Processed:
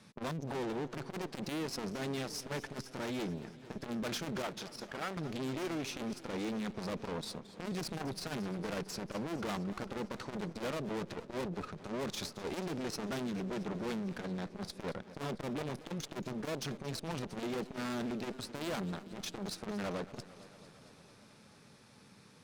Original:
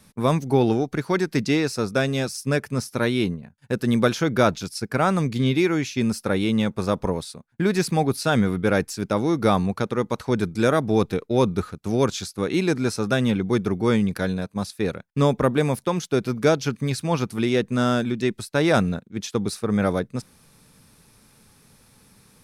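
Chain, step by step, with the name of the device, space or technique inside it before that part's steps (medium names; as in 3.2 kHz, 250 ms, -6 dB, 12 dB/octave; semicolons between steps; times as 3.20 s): valve radio (band-pass 120–5900 Hz; valve stage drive 35 dB, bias 0.75; transformer saturation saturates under 310 Hz); 4.42–5.17 s: tone controls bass -9 dB, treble -5 dB; modulated delay 225 ms, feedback 74%, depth 134 cents, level -16.5 dB; trim +1.5 dB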